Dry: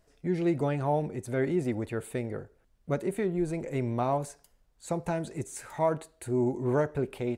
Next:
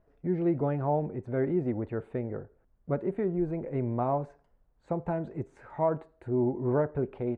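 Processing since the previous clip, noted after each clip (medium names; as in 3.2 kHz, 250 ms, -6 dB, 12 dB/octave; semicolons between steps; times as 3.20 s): low-pass 1.3 kHz 12 dB/octave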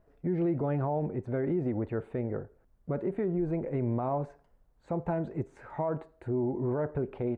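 peak limiter -24.5 dBFS, peak gain reduction 9 dB; trim +2 dB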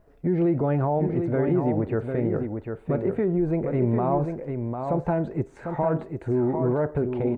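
delay 749 ms -6 dB; trim +6.5 dB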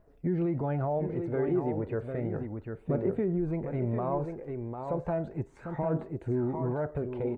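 phaser 0.33 Hz, delay 2.7 ms, feedback 34%; trim -7 dB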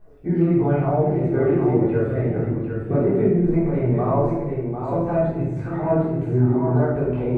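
simulated room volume 400 m³, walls mixed, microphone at 3.6 m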